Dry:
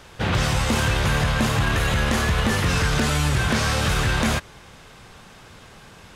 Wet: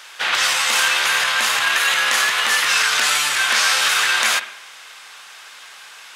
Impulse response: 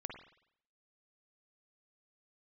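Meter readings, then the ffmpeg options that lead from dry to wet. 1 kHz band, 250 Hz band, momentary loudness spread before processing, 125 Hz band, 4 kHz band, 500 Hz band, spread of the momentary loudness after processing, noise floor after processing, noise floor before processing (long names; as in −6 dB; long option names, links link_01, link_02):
+4.5 dB, −20.0 dB, 1 LU, below −30 dB, +10.0 dB, −6.0 dB, 3 LU, −41 dBFS, −46 dBFS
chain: -filter_complex "[0:a]highpass=1400,asplit=2[link_01][link_02];[1:a]atrim=start_sample=2205[link_03];[link_02][link_03]afir=irnorm=-1:irlink=0,volume=-1.5dB[link_04];[link_01][link_04]amix=inputs=2:normalize=0,volume=6.5dB"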